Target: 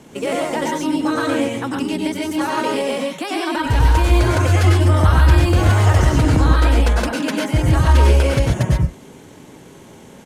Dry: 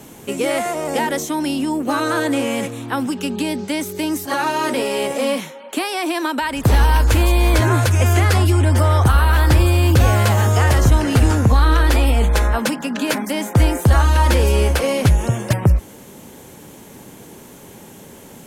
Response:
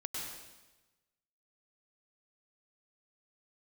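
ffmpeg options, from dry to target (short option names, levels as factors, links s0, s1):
-filter_complex "[0:a]adynamicsmooth=sensitivity=7:basefreq=7400,atempo=1.8[s0];[1:a]atrim=start_sample=2205,atrim=end_sample=6615[s1];[s0][s1]afir=irnorm=-1:irlink=0,volume=1.12"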